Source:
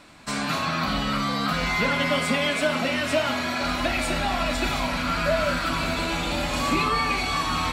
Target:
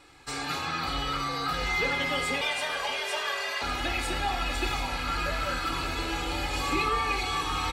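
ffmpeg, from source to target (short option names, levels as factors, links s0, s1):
-filter_complex "[0:a]aecho=1:1:2.4:0.93,asettb=1/sr,asplit=3[s0][s1][s2];[s0]atrim=end=2.414[s3];[s1]atrim=start=2.41:end=3.62,asetpts=PTS-STARTPTS,afade=t=in:d=0.004:c=qsin,afade=t=out:st=1.206:d=0.004:c=qsin,afreqshift=310[s4];[s2]atrim=start=3.616[s5];[s3][s4]acrossfade=d=0.004:c1=hsin:c2=qsin[s6];[s6][s5]acrossfade=d=0.004:c1=qsin:c2=hsin,aecho=1:1:584|1168|1752:0.178|0.0569|0.0182,volume=0.447"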